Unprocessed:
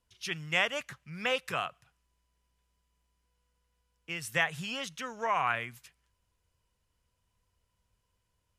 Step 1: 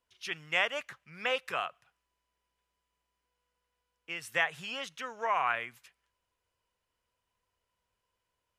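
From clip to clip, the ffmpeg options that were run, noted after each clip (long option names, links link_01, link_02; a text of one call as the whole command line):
ffmpeg -i in.wav -af "bass=frequency=250:gain=-13,treble=frequency=4000:gain=-6" out.wav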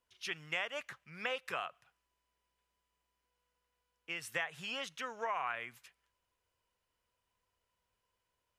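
ffmpeg -i in.wav -af "acompressor=threshold=-34dB:ratio=3,volume=-1dB" out.wav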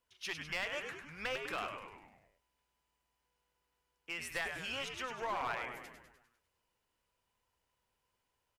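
ffmpeg -i in.wav -filter_complex "[0:a]asplit=8[link_01][link_02][link_03][link_04][link_05][link_06][link_07][link_08];[link_02]adelay=100,afreqshift=-100,volume=-7dB[link_09];[link_03]adelay=200,afreqshift=-200,volume=-11.9dB[link_10];[link_04]adelay=300,afreqshift=-300,volume=-16.8dB[link_11];[link_05]adelay=400,afreqshift=-400,volume=-21.6dB[link_12];[link_06]adelay=500,afreqshift=-500,volume=-26.5dB[link_13];[link_07]adelay=600,afreqshift=-600,volume=-31.4dB[link_14];[link_08]adelay=700,afreqshift=-700,volume=-36.3dB[link_15];[link_01][link_09][link_10][link_11][link_12][link_13][link_14][link_15]amix=inputs=8:normalize=0,aeval=exprs='clip(val(0),-1,0.02)':channel_layout=same" out.wav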